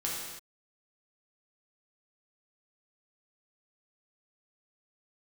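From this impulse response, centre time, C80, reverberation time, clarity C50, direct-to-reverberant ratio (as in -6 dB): 78 ms, 2.0 dB, no single decay rate, 0.0 dB, -5.0 dB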